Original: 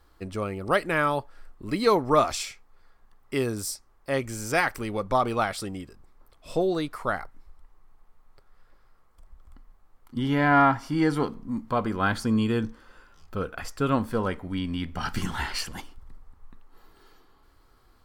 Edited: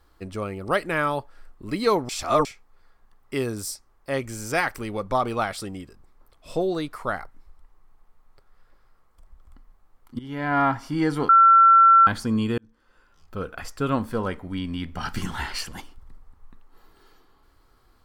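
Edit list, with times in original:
0:02.09–0:02.45: reverse
0:10.19–0:10.78: fade in, from −15.5 dB
0:11.29–0:12.07: beep over 1,350 Hz −10 dBFS
0:12.58–0:13.51: fade in

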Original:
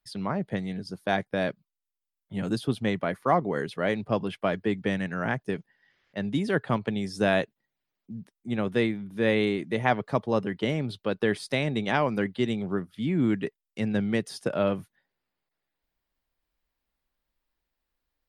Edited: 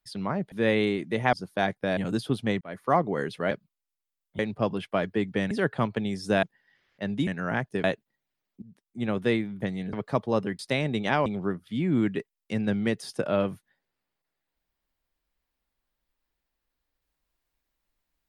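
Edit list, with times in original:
0:00.52–0:00.83: swap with 0:09.12–0:09.93
0:01.47–0:02.35: move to 0:03.89
0:02.99–0:03.27: fade in
0:05.01–0:05.58: swap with 0:06.42–0:07.34
0:08.12–0:08.56: fade in, from −17.5 dB
0:10.59–0:11.41: remove
0:12.08–0:12.53: remove

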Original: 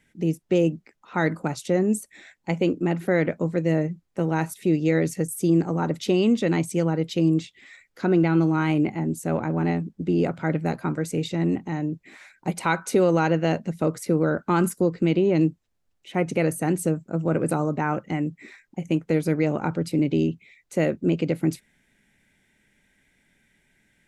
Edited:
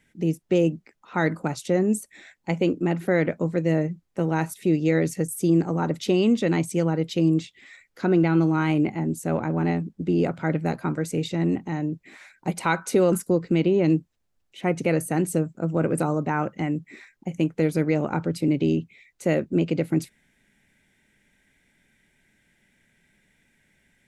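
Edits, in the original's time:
0:13.12–0:14.63: remove

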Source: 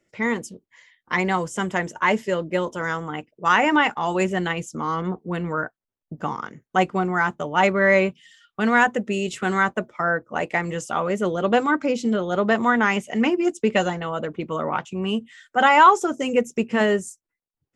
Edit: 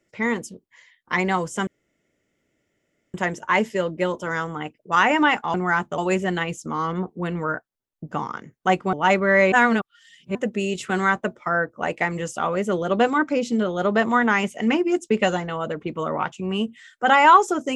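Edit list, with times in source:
0:01.67: splice in room tone 1.47 s
0:07.02–0:07.46: move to 0:04.07
0:08.05–0:08.88: reverse

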